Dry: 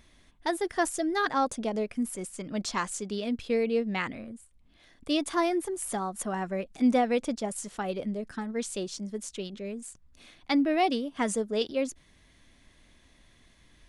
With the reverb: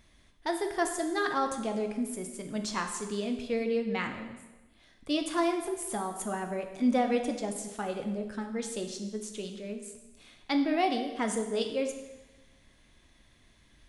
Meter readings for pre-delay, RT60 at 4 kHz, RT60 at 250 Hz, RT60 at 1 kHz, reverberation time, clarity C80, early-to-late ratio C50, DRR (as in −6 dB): 5 ms, 1.0 s, 1.1 s, 1.1 s, 1.1 s, 9.0 dB, 7.5 dB, 4.5 dB